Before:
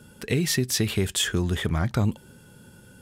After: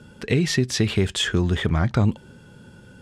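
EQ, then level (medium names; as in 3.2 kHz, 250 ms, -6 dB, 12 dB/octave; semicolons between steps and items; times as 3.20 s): distance through air 82 m; +4.0 dB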